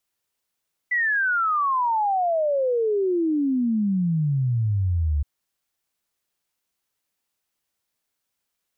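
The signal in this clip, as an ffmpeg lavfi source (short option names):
-f lavfi -i "aevalsrc='0.112*clip(min(t,4.32-t)/0.01,0,1)*sin(2*PI*2000*4.32/log(70/2000)*(exp(log(70/2000)*t/4.32)-1))':d=4.32:s=44100"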